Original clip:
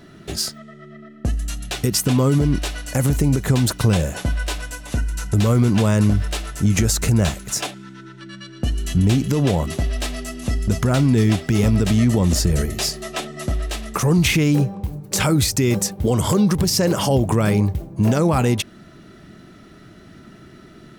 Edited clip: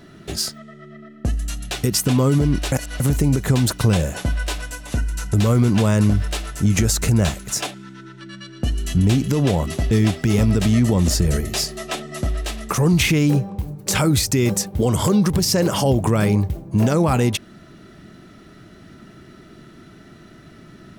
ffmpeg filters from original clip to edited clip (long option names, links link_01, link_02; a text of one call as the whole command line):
ffmpeg -i in.wav -filter_complex "[0:a]asplit=4[link_01][link_02][link_03][link_04];[link_01]atrim=end=2.722[link_05];[link_02]atrim=start=2.718:end=3.002,asetpts=PTS-STARTPTS,areverse[link_06];[link_03]atrim=start=2.998:end=9.912[link_07];[link_04]atrim=start=11.158[link_08];[link_05][link_06]acrossfade=duration=0.004:curve1=hsin:curve2=hsin[link_09];[link_09][link_07]acrossfade=duration=0.004:curve1=hsin:curve2=hsin[link_10];[link_10][link_08]acrossfade=duration=0.004:curve1=hsin:curve2=hsin" out.wav